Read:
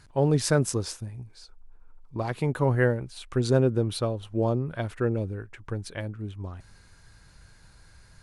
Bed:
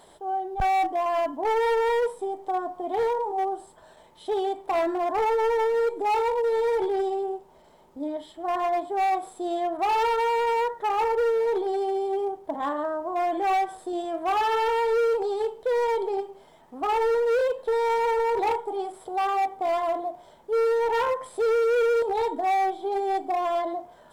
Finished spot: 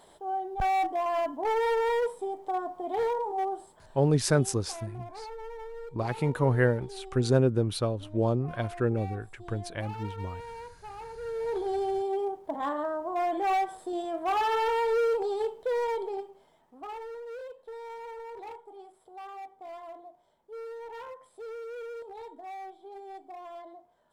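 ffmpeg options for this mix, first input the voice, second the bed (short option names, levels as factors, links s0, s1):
-filter_complex "[0:a]adelay=3800,volume=0.891[s0];[1:a]volume=3.98,afade=t=out:st=3.61:d=0.65:silence=0.177828,afade=t=in:st=11.18:d=0.55:silence=0.16788,afade=t=out:st=15.42:d=1.63:silence=0.177828[s1];[s0][s1]amix=inputs=2:normalize=0"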